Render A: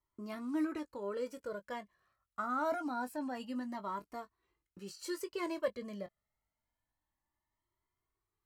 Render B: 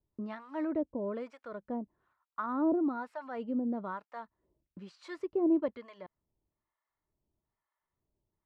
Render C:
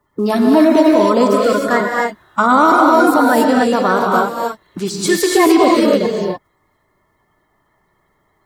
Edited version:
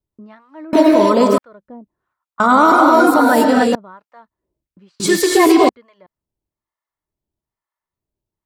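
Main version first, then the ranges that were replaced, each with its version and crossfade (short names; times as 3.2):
B
0.73–1.38 from C
2.4–3.75 from C
5–5.69 from C
not used: A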